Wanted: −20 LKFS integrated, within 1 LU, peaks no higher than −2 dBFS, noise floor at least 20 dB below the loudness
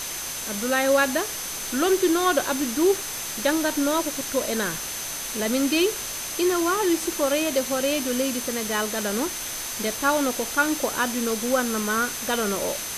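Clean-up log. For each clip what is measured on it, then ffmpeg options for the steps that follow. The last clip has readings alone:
interfering tone 6,200 Hz; level of the tone −35 dBFS; background noise floor −32 dBFS; target noise floor −44 dBFS; integrated loudness −24.0 LKFS; sample peak −7.5 dBFS; target loudness −20.0 LKFS
→ -af "bandreject=frequency=6200:width=30"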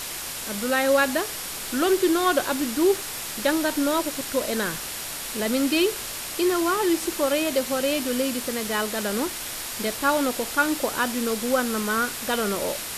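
interfering tone none found; background noise floor −33 dBFS; target noise floor −44 dBFS
→ -af "afftdn=noise_reduction=11:noise_floor=-33"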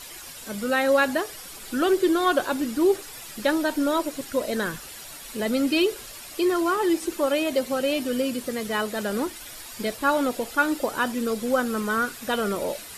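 background noise floor −41 dBFS; target noise floor −45 dBFS
→ -af "afftdn=noise_reduction=6:noise_floor=-41"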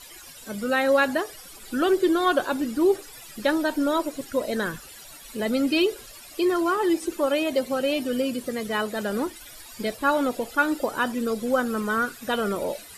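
background noise floor −45 dBFS; integrated loudness −25.0 LKFS; sample peak −9.0 dBFS; target loudness −20.0 LKFS
→ -af "volume=5dB"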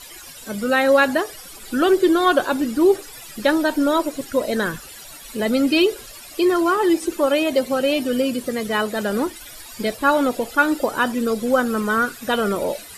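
integrated loudness −20.0 LKFS; sample peak −4.0 dBFS; background noise floor −40 dBFS

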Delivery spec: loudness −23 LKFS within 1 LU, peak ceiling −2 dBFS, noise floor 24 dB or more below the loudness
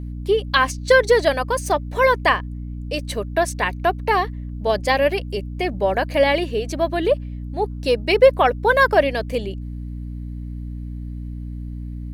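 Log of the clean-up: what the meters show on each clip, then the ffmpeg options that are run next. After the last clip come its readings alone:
mains hum 60 Hz; hum harmonics up to 300 Hz; level of the hum −28 dBFS; integrated loudness −19.5 LKFS; sample peak −1.5 dBFS; target loudness −23.0 LKFS
→ -af "bandreject=frequency=60:width_type=h:width=6,bandreject=frequency=120:width_type=h:width=6,bandreject=frequency=180:width_type=h:width=6,bandreject=frequency=240:width_type=h:width=6,bandreject=frequency=300:width_type=h:width=6"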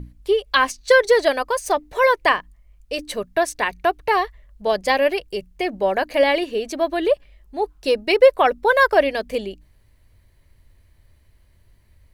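mains hum none found; integrated loudness −20.0 LKFS; sample peak −1.5 dBFS; target loudness −23.0 LKFS
→ -af "volume=-3dB"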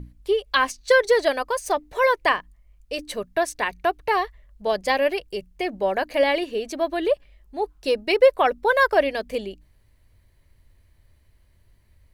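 integrated loudness −23.0 LKFS; sample peak −4.5 dBFS; background noise floor −59 dBFS

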